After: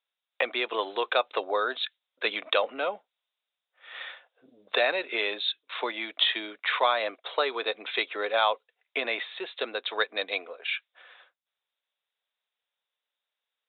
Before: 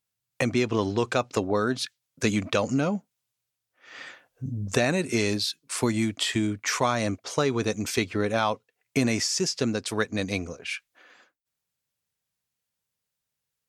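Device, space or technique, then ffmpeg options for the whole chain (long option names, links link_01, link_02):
musical greeting card: -af "aresample=8000,aresample=44100,highpass=frequency=500:width=0.5412,highpass=frequency=500:width=1.3066,equalizer=frequency=3700:width_type=o:width=0.27:gain=9.5,volume=1.5dB"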